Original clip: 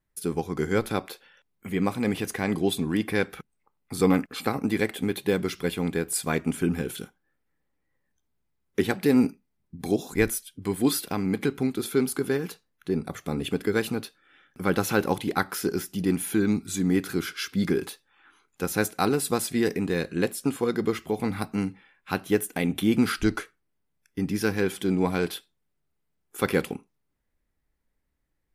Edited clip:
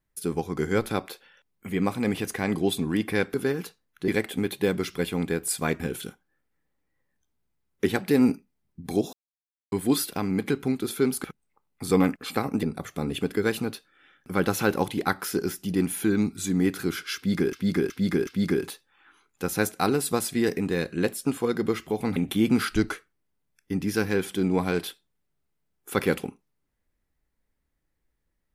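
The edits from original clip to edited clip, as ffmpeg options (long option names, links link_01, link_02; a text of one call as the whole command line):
ffmpeg -i in.wav -filter_complex "[0:a]asplit=12[link_01][link_02][link_03][link_04][link_05][link_06][link_07][link_08][link_09][link_10][link_11][link_12];[link_01]atrim=end=3.342[link_13];[link_02]atrim=start=12.188:end=12.932[link_14];[link_03]atrim=start=4.728:end=6.452[link_15];[link_04]atrim=start=6.748:end=10.08,asetpts=PTS-STARTPTS,afade=type=out:start_time=3.328:duration=0.004:curve=hsin[link_16];[link_05]atrim=start=10.08:end=10.67,asetpts=PTS-STARTPTS,volume=0[link_17];[link_06]atrim=start=10.67:end=12.192,asetpts=PTS-STARTPTS,afade=type=in:duration=0.004:curve=hsin[link_18];[link_07]atrim=start=3.338:end=4.732[link_19];[link_08]atrim=start=12.928:end=17.832[link_20];[link_09]atrim=start=17.458:end=17.832[link_21];[link_10]atrim=start=17.458:end=17.832[link_22];[link_11]atrim=start=17.458:end=21.352[link_23];[link_12]atrim=start=22.628[link_24];[link_13][link_14]acrossfade=duration=0.004:curve1=hsin:curve2=hsin[link_25];[link_25][link_15]acrossfade=duration=0.004:curve1=hsin:curve2=hsin[link_26];[link_16][link_17][link_18]concat=n=3:v=0:a=1[link_27];[link_26][link_27]acrossfade=duration=0.004:curve1=hsin:curve2=hsin[link_28];[link_28][link_19]acrossfade=duration=0.004:curve1=hsin:curve2=hsin[link_29];[link_29][link_20]acrossfade=duration=0.004:curve1=hsin:curve2=hsin[link_30];[link_30][link_21]acrossfade=duration=0.004:curve1=hsin:curve2=hsin[link_31];[link_31][link_22]acrossfade=duration=0.004:curve1=hsin:curve2=hsin[link_32];[link_32][link_23]acrossfade=duration=0.004:curve1=hsin:curve2=hsin[link_33];[link_33][link_24]acrossfade=duration=0.004:curve1=hsin:curve2=hsin" out.wav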